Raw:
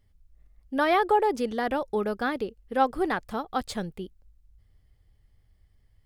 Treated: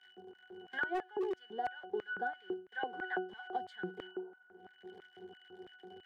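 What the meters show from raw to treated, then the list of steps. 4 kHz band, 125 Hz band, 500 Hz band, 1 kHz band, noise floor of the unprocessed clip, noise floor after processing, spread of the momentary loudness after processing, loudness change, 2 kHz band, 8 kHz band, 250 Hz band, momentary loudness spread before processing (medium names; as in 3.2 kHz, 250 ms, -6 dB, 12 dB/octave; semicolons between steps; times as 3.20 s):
-11.0 dB, -15.0 dB, -13.0 dB, -13.5 dB, -64 dBFS, -65 dBFS, 17 LU, -12.5 dB, -6.0 dB, under -25 dB, -14.0 dB, 12 LU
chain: jump at every zero crossing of -34.5 dBFS; gate with hold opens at -26 dBFS; bass shelf 210 Hz -11.5 dB; pitch-class resonator F#, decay 0.32 s; spectral replace 4.08–4.50 s, 410–1500 Hz both; LFO high-pass square 3 Hz 370–1800 Hz; overload inside the chain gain 31 dB; three bands compressed up and down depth 100%; trim +4 dB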